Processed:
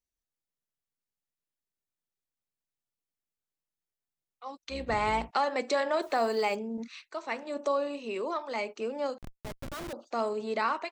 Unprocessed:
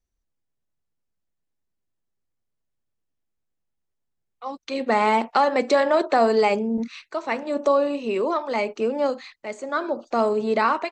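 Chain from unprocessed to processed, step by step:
0:04.63–0:05.31: sub-octave generator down 2 octaves, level +2 dB
spectral tilt +1.5 dB per octave
0:06.02–0:06.55: bit-depth reduction 8 bits, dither none
0:09.18–0:09.93: comparator with hysteresis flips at −29.5 dBFS
level −8.5 dB

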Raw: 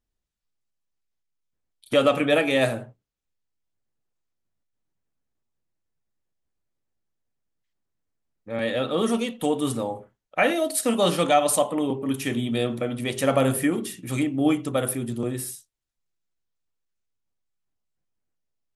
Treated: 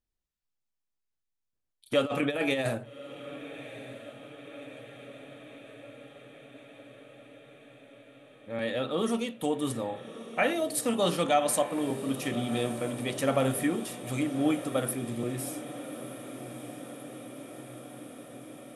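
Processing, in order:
0:02.05–0:02.78: compressor whose output falls as the input rises −22 dBFS, ratio −0.5
on a send: feedback delay with all-pass diffusion 1,215 ms, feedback 72%, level −13.5 dB
on the sum: level −5.5 dB

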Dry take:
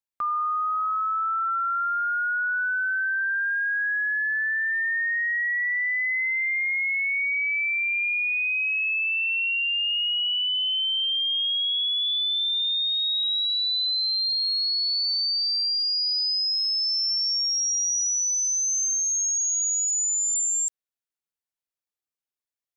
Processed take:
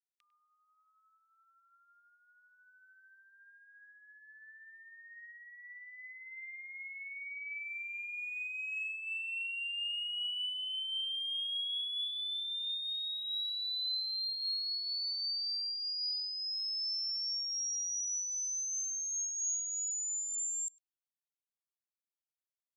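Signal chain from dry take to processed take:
Butterworth high-pass 2,500 Hz
far-end echo of a speakerphone 100 ms, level −13 dB
amplitude modulation by smooth noise, depth 60%
level −8.5 dB

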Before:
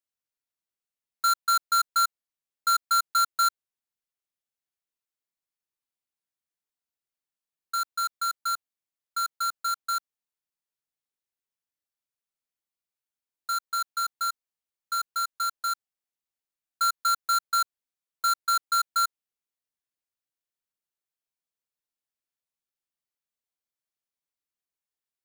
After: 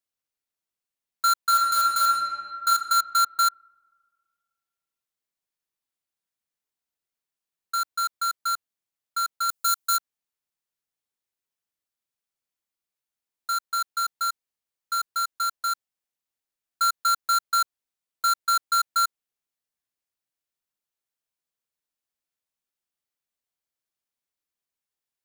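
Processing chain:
0:01.45–0:02.68: thrown reverb, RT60 2 s, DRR −1.5 dB
0:09.49–0:09.97: high-shelf EQ 5,000 Hz +11 dB
level +2 dB

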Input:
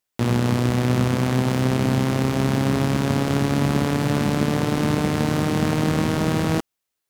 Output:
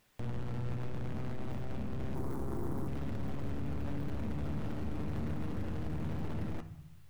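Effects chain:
wavefolder on the positive side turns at −22 dBFS
bass and treble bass +9 dB, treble −9 dB
brickwall limiter −47.5 dBFS, peak gain reduction 43 dB
0:02.15–0:02.88: drawn EQ curve 220 Hz 0 dB, 350 Hz +10 dB, 570 Hz −2 dB, 970 Hz +7 dB, 2,700 Hz −10 dB, 9,900 Hz +9 dB
convolution reverb RT60 0.85 s, pre-delay 9 ms, DRR 7.5 dB
level +15 dB

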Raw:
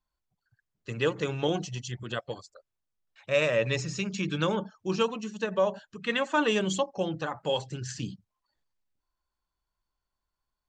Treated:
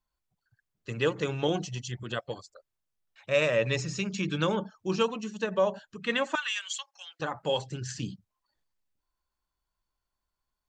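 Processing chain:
0:06.35–0:07.20: high-pass filter 1,500 Hz 24 dB per octave

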